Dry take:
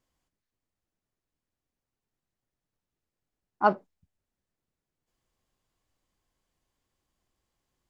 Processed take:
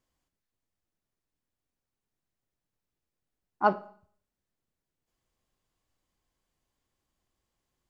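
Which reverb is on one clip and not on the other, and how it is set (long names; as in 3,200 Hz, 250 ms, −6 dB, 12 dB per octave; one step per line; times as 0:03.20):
four-comb reverb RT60 0.53 s, combs from 28 ms, DRR 15.5 dB
level −1.5 dB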